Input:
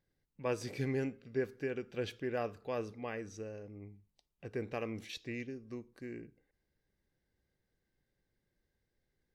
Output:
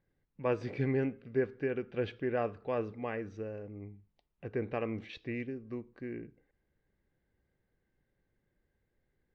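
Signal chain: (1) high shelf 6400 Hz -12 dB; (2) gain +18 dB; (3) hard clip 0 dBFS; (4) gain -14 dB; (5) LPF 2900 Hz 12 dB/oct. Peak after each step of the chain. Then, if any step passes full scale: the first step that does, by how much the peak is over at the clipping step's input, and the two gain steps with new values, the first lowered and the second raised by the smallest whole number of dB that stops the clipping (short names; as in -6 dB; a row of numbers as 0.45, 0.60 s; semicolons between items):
-23.5, -5.5, -5.5, -19.5, -19.5 dBFS; no overload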